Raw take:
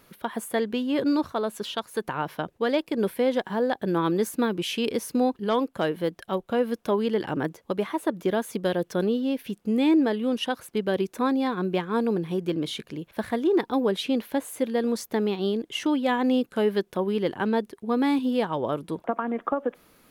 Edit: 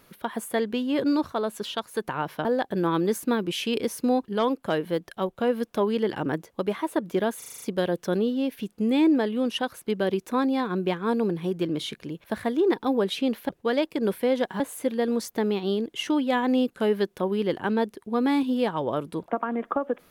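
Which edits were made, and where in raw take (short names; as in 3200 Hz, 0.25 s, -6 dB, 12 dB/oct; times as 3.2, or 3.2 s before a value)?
2.45–3.56 move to 14.36
8.49 stutter 0.04 s, 7 plays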